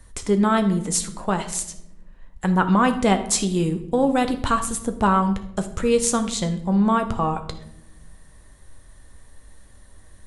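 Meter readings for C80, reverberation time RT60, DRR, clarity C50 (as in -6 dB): 14.5 dB, 0.85 s, 7.0 dB, 12.0 dB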